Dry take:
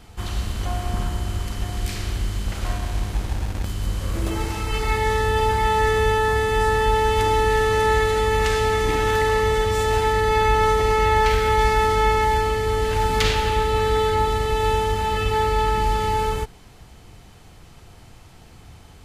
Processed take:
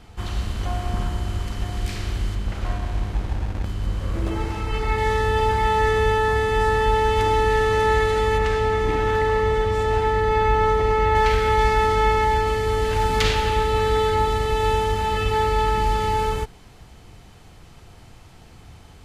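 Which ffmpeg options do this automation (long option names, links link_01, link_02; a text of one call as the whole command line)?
ffmpeg -i in.wav -af "asetnsamples=nb_out_samples=441:pad=0,asendcmd='2.35 lowpass f 2300;4.98 lowpass f 4700;8.38 lowpass f 1900;11.15 lowpass f 5000;12.47 lowpass f 9300',lowpass=frequency=4900:poles=1" out.wav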